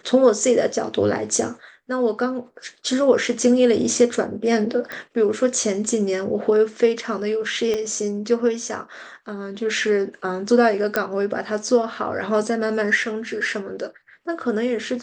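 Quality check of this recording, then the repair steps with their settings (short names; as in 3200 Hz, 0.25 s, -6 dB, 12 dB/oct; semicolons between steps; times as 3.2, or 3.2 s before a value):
4.92 pop -16 dBFS
7.74 pop -12 dBFS
10.96 pop -6 dBFS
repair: de-click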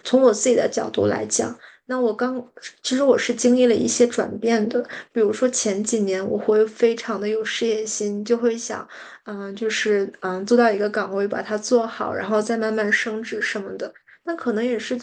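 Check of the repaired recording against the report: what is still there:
7.74 pop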